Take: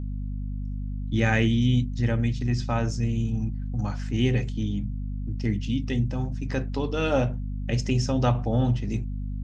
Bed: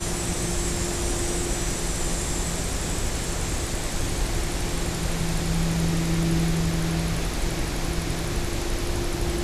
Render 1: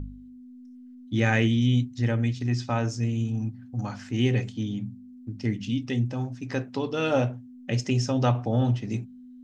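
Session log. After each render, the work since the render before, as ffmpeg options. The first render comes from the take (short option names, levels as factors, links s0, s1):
-af "bandreject=f=50:t=h:w=4,bandreject=f=100:t=h:w=4,bandreject=f=150:t=h:w=4,bandreject=f=200:t=h:w=4"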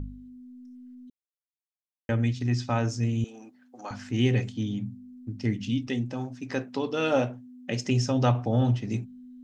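-filter_complex "[0:a]asettb=1/sr,asplit=3[s0][s1][s2];[s0]atrim=end=3.244[s3];[s1]atrim=start=3.24:end=3.91,asetpts=PTS-STARTPTS,afade=t=in:d=0.004:c=qsin,afade=t=out:st=0.666:d=0.004:c=qsin,highpass=f=360:w=0.5412,highpass=f=360:w=1.3066[s4];[s2]atrim=start=3.906[s5];[s3][s4]acrossfade=d=0.004:c1=hsin:c2=qsin[s6];[s6][s5]acrossfade=d=0.004:c1=qsin:c2=hsin,asettb=1/sr,asplit=3[s7][s8][s9];[s7]atrim=end=5.874[s10];[s8]atrim=start=5.87:end=7.86,asetpts=PTS-STARTPTS,afade=t=in:d=0.004:c=qsin,afade=t=out:st=1.986:d=0.004:c=qsin,highpass=170[s11];[s9]atrim=start=7.856[s12];[s10][s11]acrossfade=d=0.004:c1=hsin:c2=qsin[s13];[s13][s12]acrossfade=d=0.004:c1=qsin:c2=hsin,asplit=3[s14][s15][s16];[s14]atrim=end=1.1,asetpts=PTS-STARTPTS,afade=t=out:st=1.096:d=0.004:c=hsin[s17];[s15]atrim=start=1.1:end=2.09,asetpts=PTS-STARTPTS,volume=0[s18];[s16]atrim=start=2.09,asetpts=PTS-STARTPTS,afade=t=in:d=0.004:c=hsin[s19];[s17][s18][s19]concat=n=3:v=0:a=1"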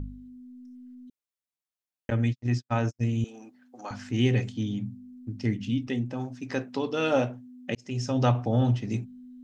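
-filter_complex "[0:a]asettb=1/sr,asplit=3[s0][s1][s2];[s0]atrim=end=2.104[s3];[s1]atrim=start=2.1:end=3.05,asetpts=PTS-STARTPTS,afade=t=in:d=0.004:c=qsin,afade=t=out:st=0.946:d=0.004:c=qsin,agate=range=0.00112:threshold=0.0398:ratio=16:release=100:detection=peak[s4];[s2]atrim=start=3.046[s5];[s3][s4]acrossfade=d=0.004:c1=hsin:c2=qsin[s6];[s6][s5]acrossfade=d=0.004:c1=qsin:c2=hsin,asettb=1/sr,asplit=3[s7][s8][s9];[s7]atrim=end=5.544[s10];[s8]atrim=start=5.54:end=6.2,asetpts=PTS-STARTPTS,afade=t=in:d=0.004:c=qsin,afade=t=out:st=0.656:d=0.004:c=qsin,equalizer=f=5600:t=o:w=1.6:g=-5.5[s11];[s9]atrim=start=6.196[s12];[s10][s11]acrossfade=d=0.004:c1=hsin:c2=qsin[s13];[s13][s12]acrossfade=d=0.004:c1=qsin:c2=hsin,asplit=2[s14][s15];[s14]atrim=end=7.75,asetpts=PTS-STARTPTS,afade=t=out:st=7.746:d=0.004:c=hsin[s16];[s15]atrim=start=7.75,asetpts=PTS-STARTPTS,afade=t=in:d=0.46[s17];[s16][s17]concat=n=2:v=0:a=1"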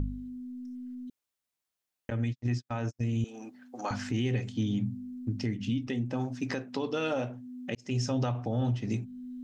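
-filter_complex "[0:a]asplit=2[s0][s1];[s1]acompressor=threshold=0.0224:ratio=6,volume=0.891[s2];[s0][s2]amix=inputs=2:normalize=0,alimiter=limit=0.0891:level=0:latency=1:release=370"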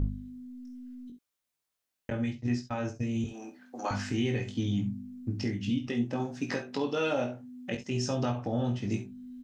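-filter_complex "[0:a]asplit=2[s0][s1];[s1]adelay=21,volume=0.596[s2];[s0][s2]amix=inputs=2:normalize=0,aecho=1:1:50|66:0.237|0.2"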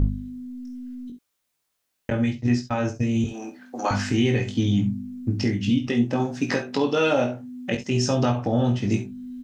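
-af "volume=2.66"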